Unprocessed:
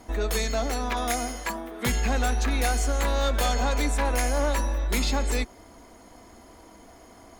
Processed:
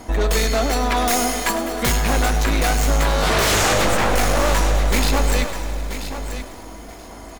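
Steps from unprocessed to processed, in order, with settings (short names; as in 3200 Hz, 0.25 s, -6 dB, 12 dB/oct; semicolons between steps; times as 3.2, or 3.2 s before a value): tracing distortion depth 0.077 ms; 1.07–1.97 high shelf 5400 Hz +6.5 dB; 3.2–3.61 reverb throw, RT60 2.9 s, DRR -6.5 dB; sine folder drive 10 dB, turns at -11 dBFS; feedback echo 0.983 s, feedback 17%, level -10.5 dB; lo-fi delay 0.102 s, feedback 80%, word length 6-bit, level -13 dB; gain -3.5 dB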